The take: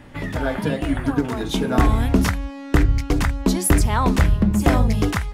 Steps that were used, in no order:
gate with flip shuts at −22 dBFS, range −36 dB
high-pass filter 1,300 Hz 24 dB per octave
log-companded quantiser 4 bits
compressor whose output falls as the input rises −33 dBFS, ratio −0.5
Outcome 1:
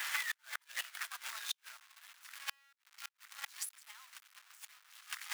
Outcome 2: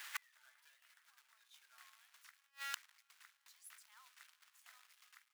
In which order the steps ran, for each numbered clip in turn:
compressor whose output falls as the input rises, then log-companded quantiser, then high-pass filter, then gate with flip
log-companded quantiser, then gate with flip, then high-pass filter, then compressor whose output falls as the input rises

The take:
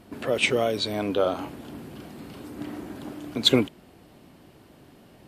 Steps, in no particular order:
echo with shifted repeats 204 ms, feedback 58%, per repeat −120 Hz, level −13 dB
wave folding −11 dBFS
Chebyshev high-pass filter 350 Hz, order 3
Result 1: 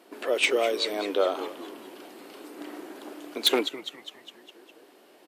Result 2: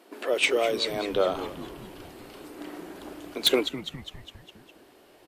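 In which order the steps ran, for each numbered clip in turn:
echo with shifted repeats, then wave folding, then Chebyshev high-pass filter
Chebyshev high-pass filter, then echo with shifted repeats, then wave folding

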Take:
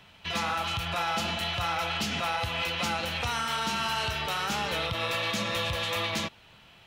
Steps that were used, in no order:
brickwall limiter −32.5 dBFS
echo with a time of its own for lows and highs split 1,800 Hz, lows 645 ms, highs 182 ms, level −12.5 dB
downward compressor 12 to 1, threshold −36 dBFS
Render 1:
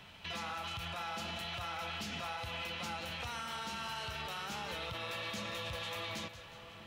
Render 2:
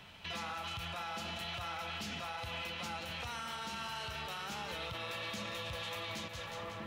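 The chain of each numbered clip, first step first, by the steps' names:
downward compressor, then brickwall limiter, then echo with a time of its own for lows and highs
echo with a time of its own for lows and highs, then downward compressor, then brickwall limiter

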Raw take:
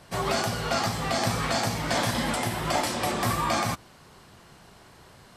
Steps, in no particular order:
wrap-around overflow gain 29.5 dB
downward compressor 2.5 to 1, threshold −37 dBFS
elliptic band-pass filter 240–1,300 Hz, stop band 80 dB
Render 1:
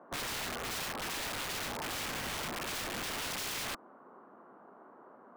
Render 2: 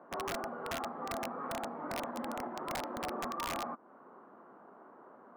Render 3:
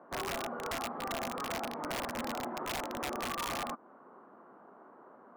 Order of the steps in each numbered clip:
elliptic band-pass filter, then wrap-around overflow, then downward compressor
downward compressor, then elliptic band-pass filter, then wrap-around overflow
elliptic band-pass filter, then downward compressor, then wrap-around overflow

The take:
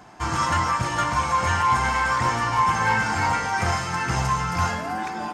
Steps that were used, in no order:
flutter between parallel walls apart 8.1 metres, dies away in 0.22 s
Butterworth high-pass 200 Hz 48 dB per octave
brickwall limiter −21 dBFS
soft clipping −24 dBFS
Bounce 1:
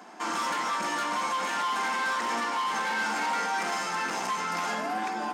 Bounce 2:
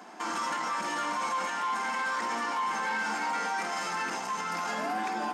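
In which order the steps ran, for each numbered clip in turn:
soft clipping, then Butterworth high-pass, then brickwall limiter, then flutter between parallel walls
flutter between parallel walls, then brickwall limiter, then soft clipping, then Butterworth high-pass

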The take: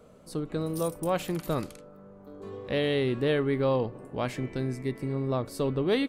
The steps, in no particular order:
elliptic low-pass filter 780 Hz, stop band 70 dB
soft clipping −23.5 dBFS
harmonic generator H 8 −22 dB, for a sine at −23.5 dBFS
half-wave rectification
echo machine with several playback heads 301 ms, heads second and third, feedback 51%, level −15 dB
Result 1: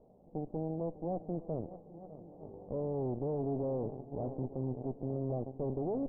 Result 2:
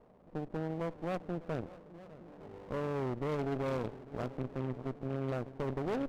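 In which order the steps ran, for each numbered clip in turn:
half-wave rectification, then echo machine with several playback heads, then harmonic generator, then soft clipping, then elliptic low-pass filter
elliptic low-pass filter, then soft clipping, then echo machine with several playback heads, then half-wave rectification, then harmonic generator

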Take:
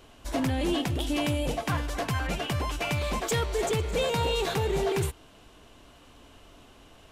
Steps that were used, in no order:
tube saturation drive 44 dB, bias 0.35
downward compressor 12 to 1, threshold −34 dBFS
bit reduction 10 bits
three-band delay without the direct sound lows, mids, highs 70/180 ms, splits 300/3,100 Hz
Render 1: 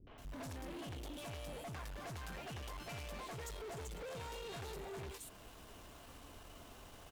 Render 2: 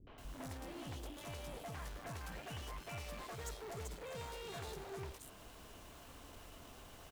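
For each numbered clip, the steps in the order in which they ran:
downward compressor, then bit reduction, then three-band delay without the direct sound, then tube saturation
downward compressor, then tube saturation, then bit reduction, then three-band delay without the direct sound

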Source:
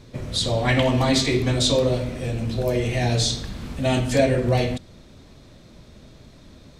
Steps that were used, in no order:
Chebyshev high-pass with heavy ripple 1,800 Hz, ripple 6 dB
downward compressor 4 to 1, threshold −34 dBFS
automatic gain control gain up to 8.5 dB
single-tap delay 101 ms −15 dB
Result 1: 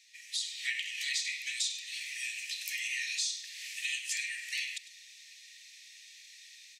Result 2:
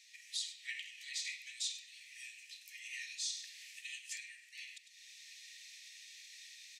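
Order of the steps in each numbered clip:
Chebyshev high-pass with heavy ripple, then automatic gain control, then downward compressor, then single-tap delay
single-tap delay, then automatic gain control, then downward compressor, then Chebyshev high-pass with heavy ripple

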